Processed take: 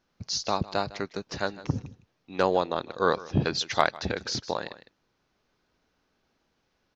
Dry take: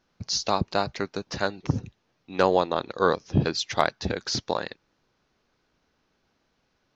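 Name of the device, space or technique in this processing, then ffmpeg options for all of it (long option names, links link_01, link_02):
ducked delay: -filter_complex "[0:a]asplit=3[link_01][link_02][link_03];[link_02]adelay=155,volume=-5dB[link_04];[link_03]apad=whole_len=313608[link_05];[link_04][link_05]sidechaincompress=threshold=-33dB:ratio=5:attack=16:release=847[link_06];[link_01][link_06]amix=inputs=2:normalize=0,asettb=1/sr,asplit=3[link_07][link_08][link_09];[link_07]atrim=end=3.074[link_10];[link_08]atrim=start=3.07:end=4.28,asetpts=PTS-STARTPTS,afade=type=in:duration=0.004:curve=qsin,afade=type=out:start_time=1.206:duration=0.004:curve=qsin,equalizer=frequency=1800:width=0.39:gain=4[link_11];[link_09]atrim=start=4.276[link_12];[link_10][link_11]acrossfade=duration=0.004:curve1=hsin:curve2=qsin[link_13];[link_13][link_12]acrossfade=duration=0.004:curve1=qsin:curve2=hsin,volume=-3dB"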